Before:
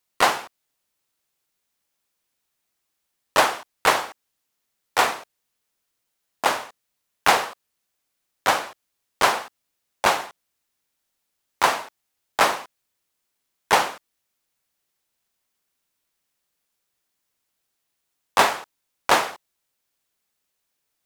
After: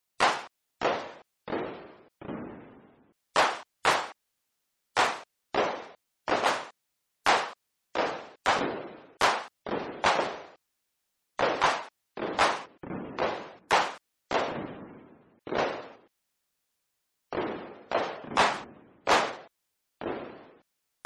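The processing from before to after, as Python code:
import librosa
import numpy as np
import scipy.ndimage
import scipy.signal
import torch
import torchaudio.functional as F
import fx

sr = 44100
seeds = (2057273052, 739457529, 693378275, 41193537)

y = fx.echo_pitch(x, sr, ms=510, semitones=-7, count=3, db_per_echo=-6.0)
y = np.clip(10.0 ** (12.0 / 20.0) * y, -1.0, 1.0) / 10.0 ** (12.0 / 20.0)
y = fx.spec_gate(y, sr, threshold_db=-25, keep='strong')
y = y * librosa.db_to_amplitude(-4.0)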